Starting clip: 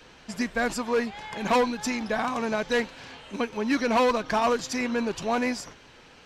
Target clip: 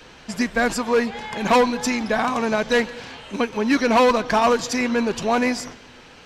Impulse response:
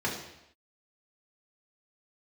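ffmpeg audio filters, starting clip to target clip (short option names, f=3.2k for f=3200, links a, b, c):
-filter_complex "[0:a]asplit=2[a][b];[1:a]atrim=start_sample=2205,adelay=136[c];[b][c]afir=irnorm=-1:irlink=0,volume=-30dB[d];[a][d]amix=inputs=2:normalize=0,volume=6dB"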